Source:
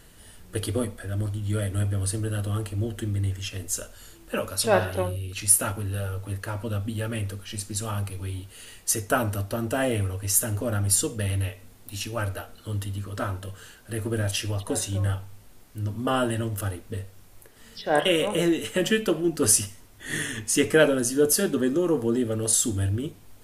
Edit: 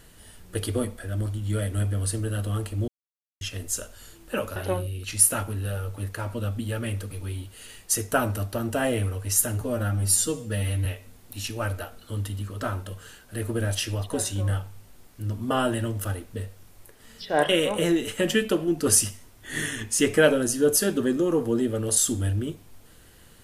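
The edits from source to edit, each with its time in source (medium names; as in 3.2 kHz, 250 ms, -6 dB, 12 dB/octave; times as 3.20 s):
2.88–3.41 s: mute
4.56–4.85 s: delete
7.40–8.09 s: delete
10.59–11.42 s: stretch 1.5×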